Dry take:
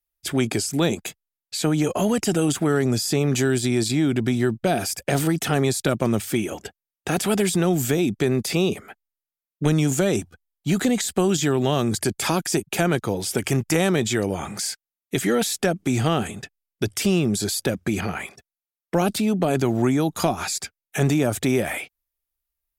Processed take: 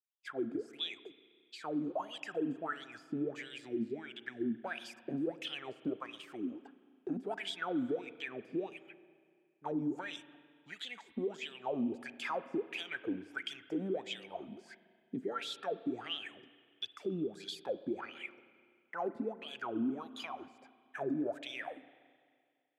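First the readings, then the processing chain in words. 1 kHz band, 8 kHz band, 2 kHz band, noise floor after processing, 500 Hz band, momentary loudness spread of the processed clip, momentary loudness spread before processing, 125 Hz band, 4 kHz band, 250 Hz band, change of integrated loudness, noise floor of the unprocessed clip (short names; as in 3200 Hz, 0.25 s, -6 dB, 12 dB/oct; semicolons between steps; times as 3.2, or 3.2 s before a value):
-14.5 dB, -33.5 dB, -14.5 dB, -72 dBFS, -16.5 dB, 11 LU, 9 LU, -28.5 dB, -13.5 dB, -16.5 dB, -17.0 dB, under -85 dBFS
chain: wah 1.5 Hz 240–3400 Hz, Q 13; limiter -28.5 dBFS, peak gain reduction 9.5 dB; spring tank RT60 2.1 s, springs 31/42 ms, chirp 75 ms, DRR 14.5 dB; gain +1 dB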